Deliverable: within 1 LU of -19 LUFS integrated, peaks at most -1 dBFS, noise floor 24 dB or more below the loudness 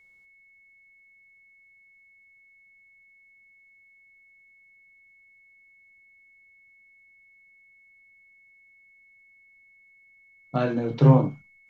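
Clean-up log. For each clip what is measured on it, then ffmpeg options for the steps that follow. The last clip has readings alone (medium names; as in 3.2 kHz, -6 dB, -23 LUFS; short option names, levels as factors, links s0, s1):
steady tone 2.2 kHz; tone level -55 dBFS; loudness -22.0 LUFS; peak level -4.0 dBFS; loudness target -19.0 LUFS
-> -af "bandreject=f=2200:w=30"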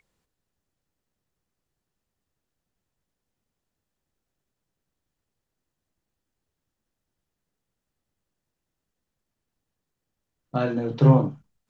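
steady tone not found; loudness -21.0 LUFS; peak level -4.0 dBFS; loudness target -19.0 LUFS
-> -af "volume=1.26"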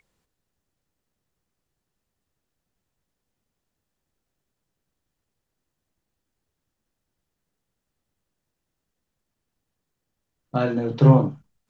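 loudness -19.0 LUFS; peak level -2.0 dBFS; noise floor -82 dBFS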